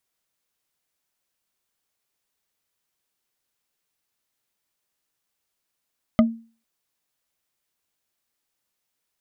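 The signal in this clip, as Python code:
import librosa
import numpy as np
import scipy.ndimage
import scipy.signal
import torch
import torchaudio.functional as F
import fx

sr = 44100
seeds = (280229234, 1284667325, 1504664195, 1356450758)

y = fx.strike_wood(sr, length_s=0.45, level_db=-9.5, body='bar', hz=228.0, decay_s=0.37, tilt_db=4.5, modes=5)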